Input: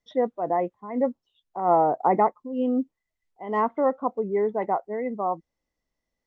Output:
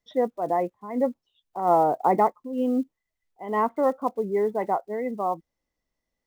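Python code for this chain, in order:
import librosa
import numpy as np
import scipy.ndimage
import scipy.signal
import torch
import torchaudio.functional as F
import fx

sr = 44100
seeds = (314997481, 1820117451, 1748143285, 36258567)

y = fx.block_float(x, sr, bits=7)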